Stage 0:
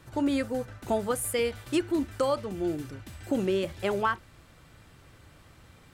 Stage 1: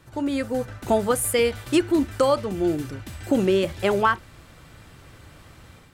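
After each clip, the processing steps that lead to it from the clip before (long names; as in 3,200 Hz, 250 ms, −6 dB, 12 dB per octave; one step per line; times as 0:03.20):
automatic gain control gain up to 7 dB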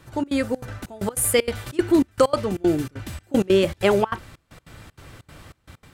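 gate pattern "xxx.xxx.xxx..x." 193 BPM −24 dB
level +3.5 dB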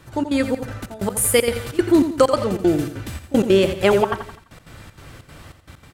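repeating echo 85 ms, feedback 42%, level −10 dB
level +2.5 dB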